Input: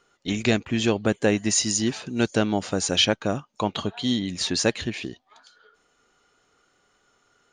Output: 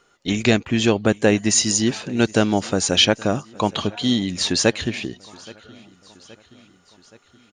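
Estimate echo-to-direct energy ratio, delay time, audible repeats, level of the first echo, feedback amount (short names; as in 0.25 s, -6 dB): -21.5 dB, 0.823 s, 3, -23.5 dB, 59%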